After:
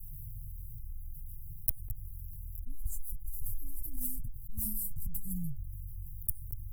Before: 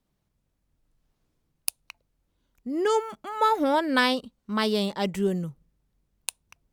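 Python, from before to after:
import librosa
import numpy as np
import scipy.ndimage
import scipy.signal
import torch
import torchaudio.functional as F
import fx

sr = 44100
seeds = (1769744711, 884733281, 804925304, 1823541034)

y = fx.lower_of_two(x, sr, delay_ms=7.5)
y = scipy.signal.sosfilt(scipy.signal.cheby2(4, 70, [390.0, 3900.0], 'bandstop', fs=sr, output='sos'), y)
y = fx.env_flatten(y, sr, amount_pct=70)
y = y * 10.0 ** (3.0 / 20.0)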